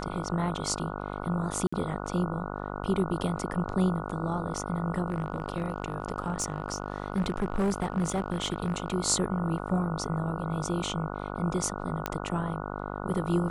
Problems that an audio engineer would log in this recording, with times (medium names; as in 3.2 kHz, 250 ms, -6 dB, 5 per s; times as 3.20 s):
buzz 50 Hz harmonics 29 -36 dBFS
1.67–1.73 s: dropout 55 ms
5.08–8.95 s: clipped -22.5 dBFS
12.06 s: pop -13 dBFS